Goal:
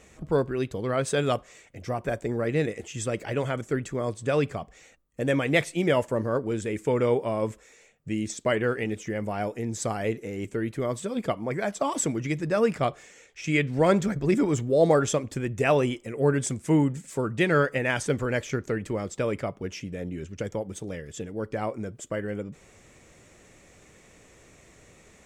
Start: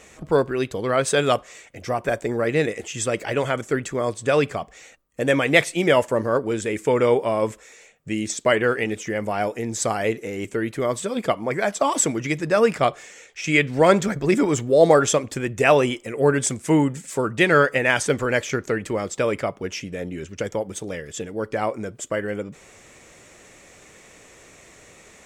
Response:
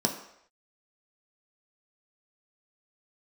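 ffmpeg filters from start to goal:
-af "lowshelf=f=290:g=9,volume=-8dB"

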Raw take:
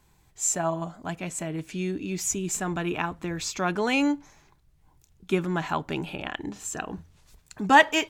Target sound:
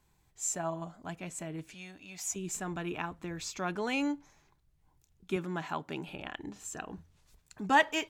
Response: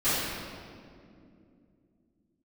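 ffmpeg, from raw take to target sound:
-filter_complex "[0:a]asettb=1/sr,asplit=3[a][b][c];[a]atrim=end=1.744[d];[b]atrim=start=1.74:end=2.36,asetpts=PTS-STARTPTS,afade=t=in:d=0.004:c=qsin,afade=t=out:st=0.616:d=0.004:c=qsin,lowshelf=f=510:t=q:w=3:g=-10.5[e];[c]atrim=start=2.356[f];[d][e]acrossfade=d=0.004:c1=hsin:c2=qsin[g];[g][f]acrossfade=d=0.004:c1=qsin:c2=hsin,asettb=1/sr,asplit=3[h][i][j];[h]atrim=end=5.364[k];[i]atrim=start=5.36:end=6.08,asetpts=PTS-STARTPTS,afade=t=in:d=0.004:c=qsin,afade=t=out:st=0.716:d=0.004:c=qsin,highpass=130[l];[j]atrim=start=6.076[m];[k][l]acrossfade=d=0.004:c1=hsin:c2=qsin[n];[n][m]acrossfade=d=0.004:c1=qsin:c2=hsin,volume=-8dB"

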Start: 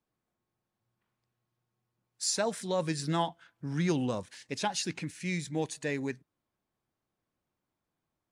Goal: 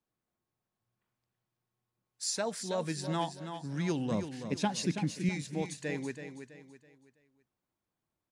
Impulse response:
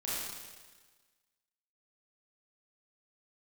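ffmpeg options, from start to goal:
-filter_complex "[0:a]asettb=1/sr,asplit=3[a][b][c];[a]atrim=end=4.114[d];[b]atrim=start=4.11:end=5.29,asetpts=PTS-STARTPTS,afade=t=in:d=0.004:c=qsin,afade=t=out:st=1.176:d=0.004:c=qsin,equalizer=f=200:t=o:w=1.8:g=11[e];[c]atrim=start=5.286[f];[d][e]acrossfade=d=0.004:c1=hsin:c2=qsin[g];[g][f]acrossfade=d=0.004:c1=qsin:c2=hsin,aecho=1:1:328|656|984|1312:0.355|0.131|0.0486|0.018,volume=-3.5dB"

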